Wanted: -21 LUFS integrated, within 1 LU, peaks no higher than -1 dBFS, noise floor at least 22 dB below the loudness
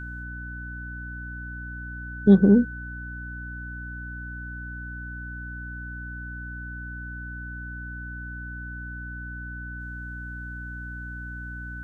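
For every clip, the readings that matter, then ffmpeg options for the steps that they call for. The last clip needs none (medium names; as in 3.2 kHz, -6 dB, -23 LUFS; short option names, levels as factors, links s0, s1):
hum 60 Hz; highest harmonic 300 Hz; hum level -35 dBFS; steady tone 1.5 kHz; tone level -37 dBFS; loudness -29.5 LUFS; peak level -5.0 dBFS; loudness target -21.0 LUFS
-> -af "bandreject=f=60:t=h:w=6,bandreject=f=120:t=h:w=6,bandreject=f=180:t=h:w=6,bandreject=f=240:t=h:w=6,bandreject=f=300:t=h:w=6"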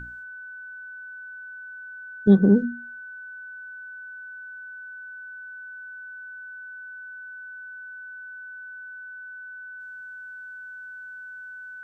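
hum not found; steady tone 1.5 kHz; tone level -37 dBFS
-> -af "bandreject=f=1500:w=30"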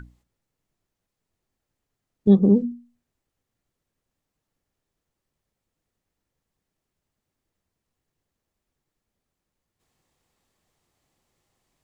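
steady tone not found; loudness -19.0 LUFS; peak level -5.5 dBFS; loudness target -21.0 LUFS
-> -af "volume=0.794"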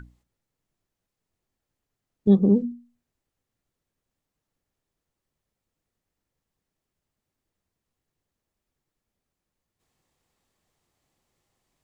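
loudness -21.0 LUFS; peak level -7.5 dBFS; noise floor -86 dBFS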